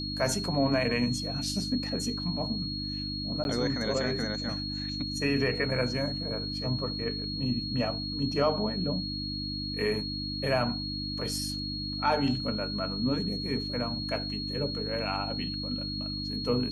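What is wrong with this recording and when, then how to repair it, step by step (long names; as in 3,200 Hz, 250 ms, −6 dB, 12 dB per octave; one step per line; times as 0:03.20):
mains hum 50 Hz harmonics 6 −37 dBFS
whistle 4,300 Hz −35 dBFS
0:03.44–0:03.45: drop-out 11 ms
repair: hum removal 50 Hz, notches 6
notch filter 4,300 Hz, Q 30
repair the gap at 0:03.44, 11 ms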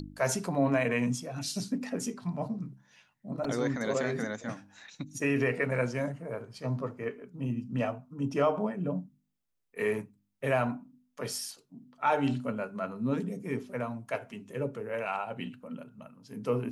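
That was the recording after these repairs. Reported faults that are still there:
none of them is left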